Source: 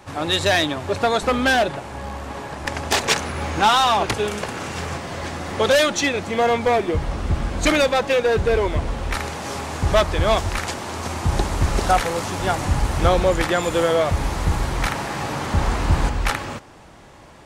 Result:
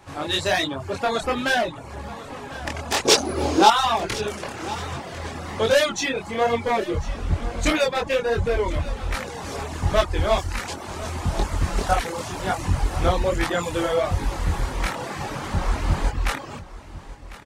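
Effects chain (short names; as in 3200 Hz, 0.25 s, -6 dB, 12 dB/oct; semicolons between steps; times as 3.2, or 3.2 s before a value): chorus voices 2, 1.3 Hz, delay 24 ms, depth 3 ms; 3.05–3.7 EQ curve 200 Hz 0 dB, 300 Hz +15 dB, 1900 Hz -2 dB, 4900 Hz +11 dB, 7300 Hz +7 dB; reverb removal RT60 0.55 s; on a send: echo 1.049 s -17 dB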